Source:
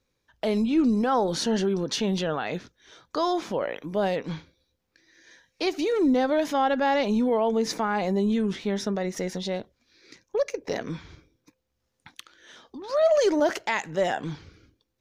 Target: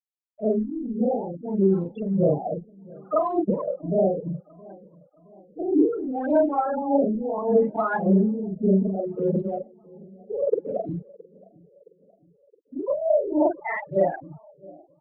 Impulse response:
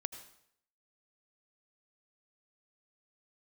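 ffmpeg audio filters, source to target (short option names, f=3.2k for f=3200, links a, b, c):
-filter_complex "[0:a]afftfilt=real='re':imag='-im':win_size=4096:overlap=0.75,aemphasis=mode=reproduction:type=50fm,bandreject=f=60:t=h:w=6,bandreject=f=120:t=h:w=6,bandreject=f=180:t=h:w=6,afftfilt=real='re*gte(hypot(re,im),0.0631)':imag='im*gte(hypot(re,im),0.0631)':win_size=1024:overlap=0.75,adynamicequalizer=threshold=0.00251:dfrequency=1200:dqfactor=4.7:tfrequency=1200:tqfactor=4.7:attack=5:release=100:ratio=0.375:range=1.5:mode=boostabove:tftype=bell,dynaudnorm=f=340:g=13:m=14dB,alimiter=limit=-13.5dB:level=0:latency=1:release=52,acompressor=threshold=-22dB:ratio=6,aphaser=in_gain=1:out_gain=1:delay=1.6:decay=0.64:speed=1.7:type=sinusoidal,aexciter=amount=13:drive=2.4:freq=5.1k,asplit=2[a][b];[b]adelay=668,lowpass=f=1.1k:p=1,volume=-23dB,asplit=2[c][d];[d]adelay=668,lowpass=f=1.1k:p=1,volume=0.53,asplit=2[e][f];[f]adelay=668,lowpass=f=1.1k:p=1,volume=0.53,asplit=2[g][h];[h]adelay=668,lowpass=f=1.1k:p=1,volume=0.53[i];[c][e][g][i]amix=inputs=4:normalize=0[j];[a][j]amix=inputs=2:normalize=0,afftfilt=real='re*lt(b*sr/1024,750*pow(4100/750,0.5+0.5*sin(2*PI*0.66*pts/sr)))':imag='im*lt(b*sr/1024,750*pow(4100/750,0.5+0.5*sin(2*PI*0.66*pts/sr)))':win_size=1024:overlap=0.75,volume=-1dB"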